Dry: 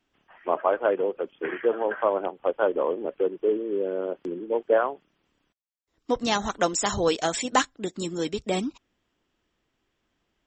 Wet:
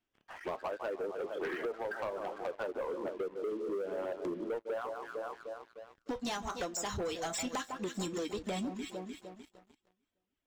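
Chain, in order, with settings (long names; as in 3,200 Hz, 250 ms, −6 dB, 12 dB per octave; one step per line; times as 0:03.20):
reverb reduction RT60 1.4 s
on a send: delay that swaps between a low-pass and a high-pass 151 ms, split 1,500 Hz, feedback 66%, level −13 dB
on the sum: flanger 0.22 Hz, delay 8.8 ms, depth 3.2 ms, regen −60%
downward compressor 20 to 1, threshold −39 dBFS, peak gain reduction 21 dB
leveller curve on the samples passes 3
level −2 dB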